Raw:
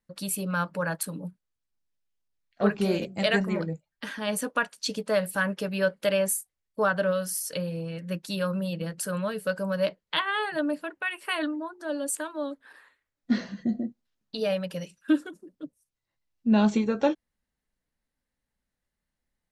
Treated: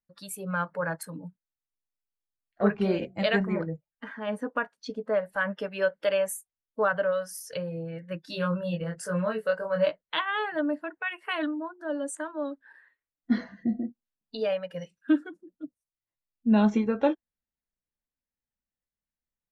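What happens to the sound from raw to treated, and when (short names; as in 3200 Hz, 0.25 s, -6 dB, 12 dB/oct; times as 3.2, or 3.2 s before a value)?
3.67–5.32 high shelf 3100 Hz -> 2100 Hz -10.5 dB
8.25–10.02 doubler 23 ms -2.5 dB
whole clip: spectral noise reduction 12 dB; high shelf 4100 Hz -9 dB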